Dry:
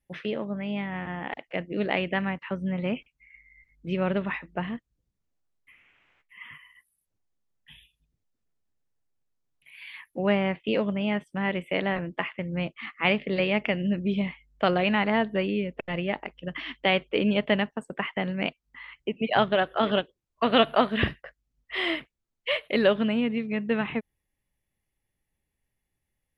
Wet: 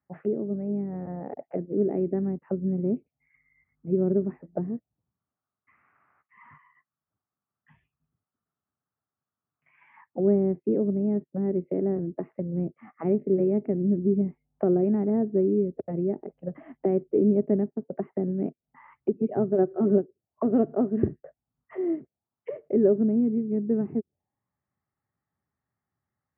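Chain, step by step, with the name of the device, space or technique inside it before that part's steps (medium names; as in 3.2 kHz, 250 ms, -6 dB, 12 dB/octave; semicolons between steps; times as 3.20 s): envelope filter bass rig (touch-sensitive low-pass 380–1200 Hz down, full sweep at -27.5 dBFS; cabinet simulation 86–2200 Hz, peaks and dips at 330 Hz -4 dB, 500 Hz -8 dB, 1 kHz -7 dB); 19.58–19.98 s: comb 5.4 ms, depth 73%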